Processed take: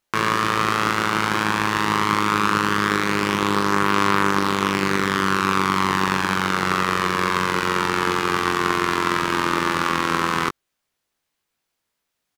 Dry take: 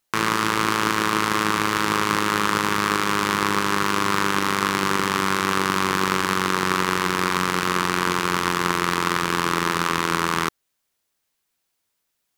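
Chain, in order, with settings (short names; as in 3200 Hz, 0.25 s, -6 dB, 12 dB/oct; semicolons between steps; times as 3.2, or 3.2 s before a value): high shelf 5500 Hz -8 dB; doubler 20 ms -7 dB; gain +1 dB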